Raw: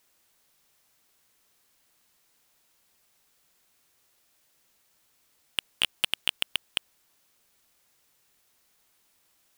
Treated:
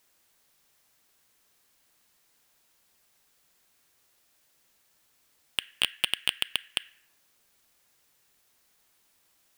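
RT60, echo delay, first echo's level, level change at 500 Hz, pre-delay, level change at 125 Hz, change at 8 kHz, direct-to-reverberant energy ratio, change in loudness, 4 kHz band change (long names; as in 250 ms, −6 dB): 0.75 s, no echo audible, no echo audible, 0.0 dB, 4 ms, 0.0 dB, 0.0 dB, 11.5 dB, 0.0 dB, 0.0 dB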